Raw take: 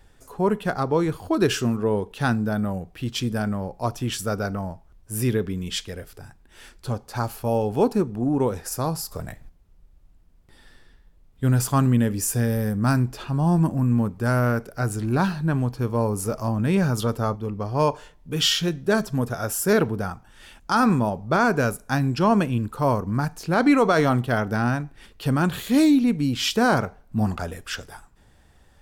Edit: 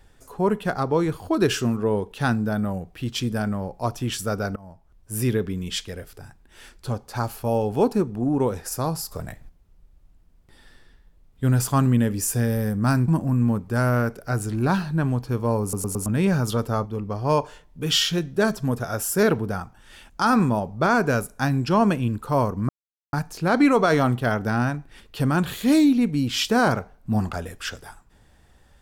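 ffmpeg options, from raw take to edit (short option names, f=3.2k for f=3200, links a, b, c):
-filter_complex "[0:a]asplit=8[a][b][c][d][e][f][g][h];[a]atrim=end=4.56,asetpts=PTS-STARTPTS,afade=t=out:st=4.556:d=0.004:c=hsin:silence=0.0841395[i];[b]atrim=start=4.56:end=13.082,asetpts=PTS-STARTPTS,afade=t=in:d=0.58:silence=0.0841395[j];[c]atrim=start=13.578:end=16.232[k];[d]atrim=start=16.118:end=16.232[l];[e]atrim=start=16.118:end=16.232[m];[f]atrim=start=16.118:end=16.232[n];[g]atrim=start=16.558:end=23.19,asetpts=PTS-STARTPTS,afade=t=out:st=6.628:d=0.004:c=hsin,apad=pad_dur=0.44[o];[h]atrim=start=23.19,asetpts=PTS-STARTPTS,afade=t=in:d=0.004:c=hsin[p];[i][j]concat=n=2:v=0:a=1[q];[q][k]acrossfade=d=0.004:c1=hsin:c2=hsin[r];[r][l]acrossfade=d=0.004:c1=hsin:c2=hsin[s];[s][m]acrossfade=d=0.004:c1=hsin:c2=hsin[t];[t][n]acrossfade=d=0.004:c1=hsin:c2=hsin[u];[o][p]concat=n=2:v=0:a=1[v];[u][v]acrossfade=d=0.004:c1=hsin:c2=hsin"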